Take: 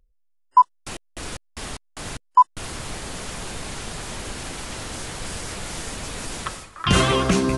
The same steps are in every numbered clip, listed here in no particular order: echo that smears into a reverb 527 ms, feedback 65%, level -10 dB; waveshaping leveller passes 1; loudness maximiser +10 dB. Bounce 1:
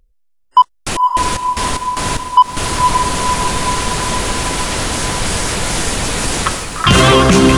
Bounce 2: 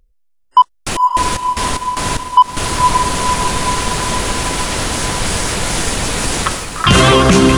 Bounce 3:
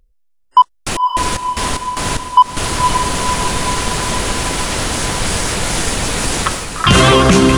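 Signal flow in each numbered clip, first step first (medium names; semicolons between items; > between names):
echo that smears into a reverb > loudness maximiser > waveshaping leveller; echo that smears into a reverb > waveshaping leveller > loudness maximiser; waveshaping leveller > echo that smears into a reverb > loudness maximiser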